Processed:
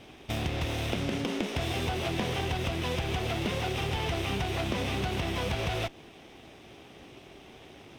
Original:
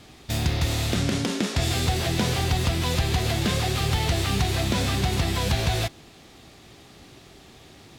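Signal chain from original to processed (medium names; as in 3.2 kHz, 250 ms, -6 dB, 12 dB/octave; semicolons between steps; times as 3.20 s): comb filter that takes the minimum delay 0.35 ms; tone controls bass -8 dB, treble -13 dB; compression 2.5:1, threshold -32 dBFS, peak gain reduction 5.5 dB; trim +3 dB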